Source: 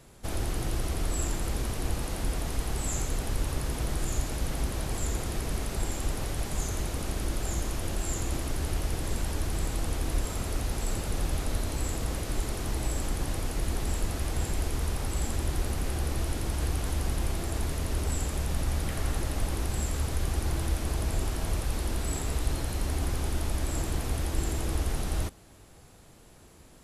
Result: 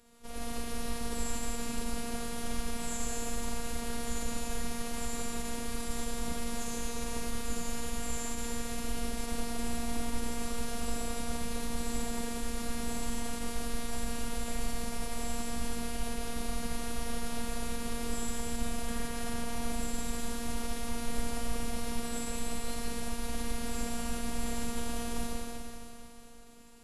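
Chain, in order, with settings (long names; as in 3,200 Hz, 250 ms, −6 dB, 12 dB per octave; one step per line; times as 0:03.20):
four-comb reverb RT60 3.1 s, DRR −5.5 dB
phase-vocoder pitch shift with formants kept −3 semitones
phases set to zero 234 Hz
level −5.5 dB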